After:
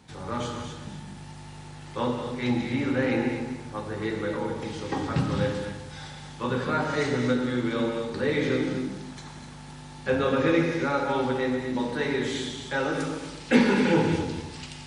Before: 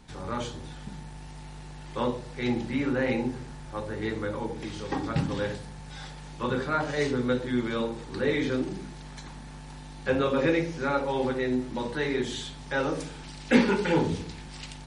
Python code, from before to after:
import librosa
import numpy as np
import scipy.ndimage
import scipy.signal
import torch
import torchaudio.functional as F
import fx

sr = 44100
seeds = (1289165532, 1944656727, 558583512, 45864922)

y = scipy.signal.sosfilt(scipy.signal.butter(4, 64.0, 'highpass', fs=sr, output='sos'), x)
y = y + 10.0 ** (-11.5 / 20.0) * np.pad(y, (int(248 * sr / 1000.0), 0))[:len(y)]
y = fx.rev_gated(y, sr, seeds[0], gate_ms=280, shape='flat', drr_db=3.0)